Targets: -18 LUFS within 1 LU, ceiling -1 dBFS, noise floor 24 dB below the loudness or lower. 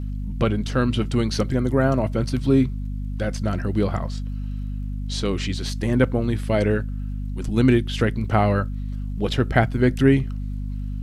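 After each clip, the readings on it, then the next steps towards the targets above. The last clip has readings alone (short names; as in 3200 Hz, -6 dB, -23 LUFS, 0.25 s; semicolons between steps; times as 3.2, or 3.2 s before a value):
ticks 33/s; hum 50 Hz; harmonics up to 250 Hz; hum level -25 dBFS; loudness -23.0 LUFS; peak -3.5 dBFS; loudness target -18.0 LUFS
-> de-click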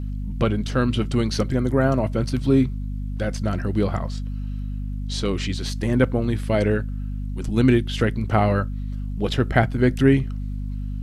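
ticks 0/s; hum 50 Hz; harmonics up to 250 Hz; hum level -25 dBFS
-> notches 50/100/150/200/250 Hz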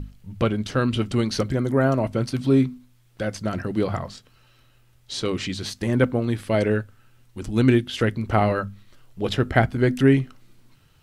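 hum none; loudness -23.0 LUFS; peak -4.5 dBFS; loudness target -18.0 LUFS
-> gain +5 dB; limiter -1 dBFS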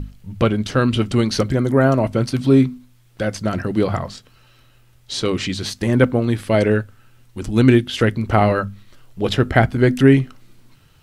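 loudness -18.0 LUFS; peak -1.0 dBFS; noise floor -53 dBFS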